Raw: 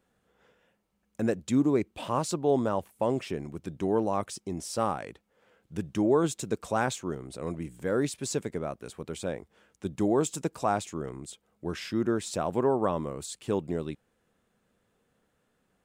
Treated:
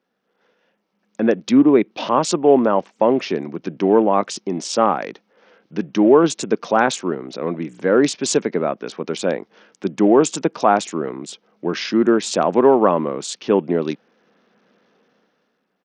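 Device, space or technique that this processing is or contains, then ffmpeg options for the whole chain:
Bluetooth headset: -af "highpass=frequency=190:width=0.5412,highpass=frequency=190:width=1.3066,dynaudnorm=framelen=170:gausssize=11:maxgain=15.5dB,aresample=16000,aresample=44100" -ar 48000 -c:a sbc -b:a 64k

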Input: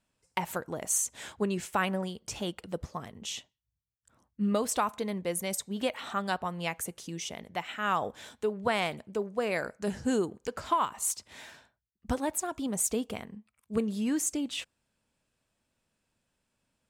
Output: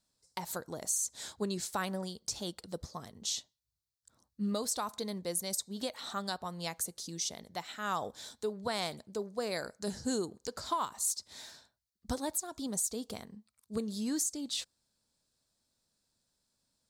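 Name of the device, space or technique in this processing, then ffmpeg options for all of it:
over-bright horn tweeter: -af "highshelf=frequency=3400:width_type=q:width=3:gain=7,alimiter=limit=-16.5dB:level=0:latency=1:release=223,volume=-5dB"

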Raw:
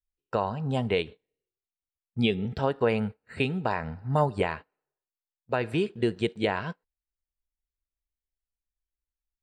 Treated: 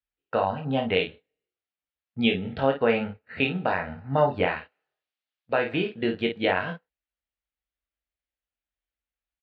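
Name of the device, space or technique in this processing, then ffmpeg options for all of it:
guitar cabinet: -filter_complex "[0:a]highpass=79,equalizer=frequency=88:width_type=q:width=4:gain=-7,equalizer=frequency=130:width_type=q:width=4:gain=-10,equalizer=frequency=200:width_type=q:width=4:gain=-6,equalizer=frequency=380:width_type=q:width=4:gain=-9,equalizer=frequency=1000:width_type=q:width=4:gain=-7,lowpass=frequency=3500:width=0.5412,lowpass=frequency=3500:width=1.3066,asettb=1/sr,asplit=3[link_01][link_02][link_03];[link_01]atrim=end=4.564[link_04];[link_02]atrim=start=4.56:end=5.53,asetpts=PTS-STARTPTS,afade=type=in:duration=0.004:curve=qsin,afade=type=out:start_time=0.966:duration=0.004:curve=qsin,highshelf=frequency=2700:gain=12[link_05];[link_03]atrim=start=5.526[link_06];[link_04][link_05]acrossfade=duration=0.004:curve1=hsin:curve2=qsin[link_07];[link_07][link_06]acrossfade=duration=0.004:curve1=qsin:curve2=hsin,aecho=1:1:22|52:0.596|0.422,volume=4dB"

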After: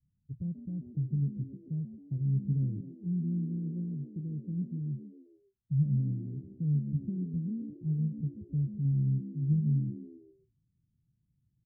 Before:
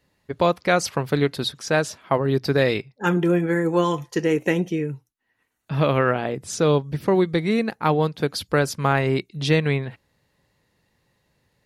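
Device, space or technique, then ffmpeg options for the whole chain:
the neighbour's flat through the wall: -filter_complex "[0:a]lowpass=frequency=170:width=0.5412,lowpass=frequency=170:width=1.3066,equalizer=frequency=130:width_type=o:width=0.77:gain=4.5,asplit=5[link_01][link_02][link_03][link_04][link_05];[link_02]adelay=134,afreqshift=64,volume=-13.5dB[link_06];[link_03]adelay=268,afreqshift=128,volume=-20.6dB[link_07];[link_04]adelay=402,afreqshift=192,volume=-27.8dB[link_08];[link_05]adelay=536,afreqshift=256,volume=-34.9dB[link_09];[link_01][link_06][link_07][link_08][link_09]amix=inputs=5:normalize=0,volume=-6dB"

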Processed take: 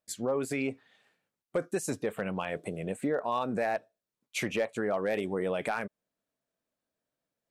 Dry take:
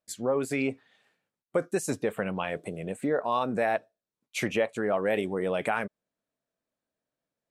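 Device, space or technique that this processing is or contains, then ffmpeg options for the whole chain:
clipper into limiter: -af "asoftclip=type=hard:threshold=-17.5dB,alimiter=limit=-21dB:level=0:latency=1:release=174"

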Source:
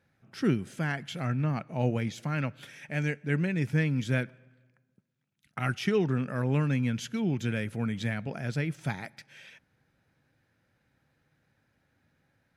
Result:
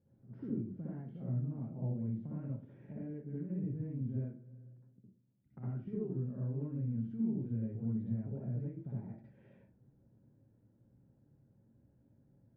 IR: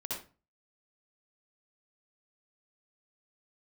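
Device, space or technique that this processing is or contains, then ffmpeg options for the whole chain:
television next door: -filter_complex "[0:a]acompressor=threshold=-44dB:ratio=4,lowpass=350[link_01];[1:a]atrim=start_sample=2205[link_02];[link_01][link_02]afir=irnorm=-1:irlink=0,volume=5dB"

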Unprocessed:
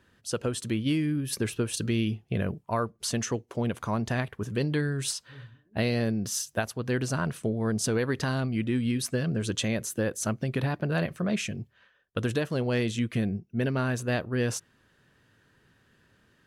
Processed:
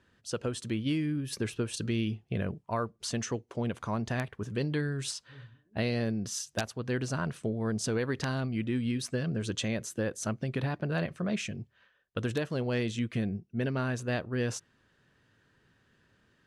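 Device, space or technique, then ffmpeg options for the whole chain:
overflowing digital effects unit: -af "aeval=exprs='(mod(6.31*val(0)+1,2)-1)/6.31':channel_layout=same,lowpass=8400,volume=-3.5dB"

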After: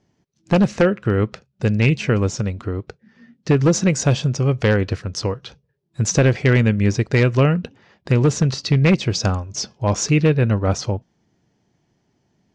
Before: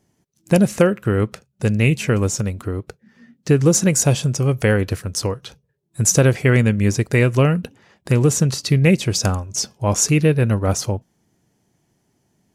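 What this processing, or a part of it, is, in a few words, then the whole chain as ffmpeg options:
synthesiser wavefolder: -af "aeval=exprs='0.422*(abs(mod(val(0)/0.422+3,4)-2)-1)':channel_layout=same,lowpass=frequency=5700:width=0.5412,lowpass=frequency=5700:width=1.3066"

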